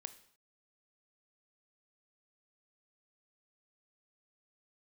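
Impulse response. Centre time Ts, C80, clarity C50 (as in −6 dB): 5 ms, 17.5 dB, 14.5 dB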